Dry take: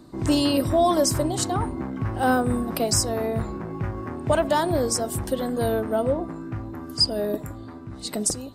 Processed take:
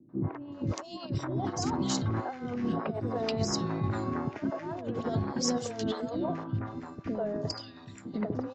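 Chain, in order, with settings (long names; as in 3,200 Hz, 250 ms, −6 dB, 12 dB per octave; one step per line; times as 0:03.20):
high-pass filter 100 Hz 24 dB per octave
noise gate −34 dBFS, range −10 dB
Butterworth low-pass 7,100 Hz 96 dB per octave
compressor whose output falls as the input rises −28 dBFS, ratio −0.5
three-band delay without the direct sound lows, mids, highs 90/520 ms, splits 420/1,900 Hz
level −2 dB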